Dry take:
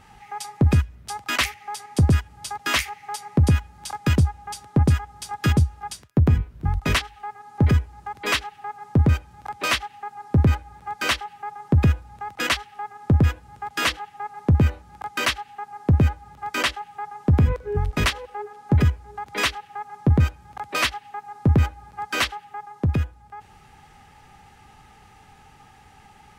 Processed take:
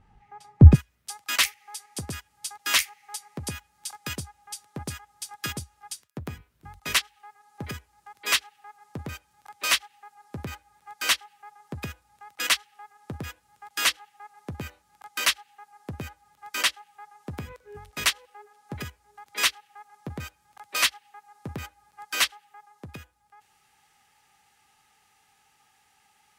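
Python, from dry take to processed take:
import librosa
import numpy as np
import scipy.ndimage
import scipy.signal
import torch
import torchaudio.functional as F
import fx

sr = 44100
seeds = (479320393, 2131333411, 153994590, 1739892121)

y = fx.tilt_eq(x, sr, slope=fx.steps((0.0, -2.5), (0.74, 3.5)))
y = fx.upward_expand(y, sr, threshold_db=-33.0, expansion=1.5)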